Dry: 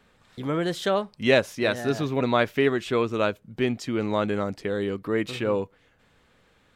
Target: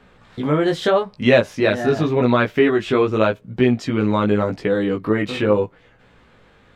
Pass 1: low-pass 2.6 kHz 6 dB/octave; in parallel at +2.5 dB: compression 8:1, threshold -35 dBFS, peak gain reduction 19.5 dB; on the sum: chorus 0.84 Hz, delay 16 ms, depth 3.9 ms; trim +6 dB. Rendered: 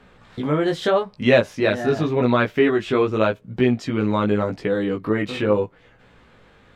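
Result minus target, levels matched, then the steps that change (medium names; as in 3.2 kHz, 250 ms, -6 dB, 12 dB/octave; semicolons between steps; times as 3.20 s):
compression: peak gain reduction +7 dB
change: compression 8:1, threshold -27 dBFS, peak gain reduction 12.5 dB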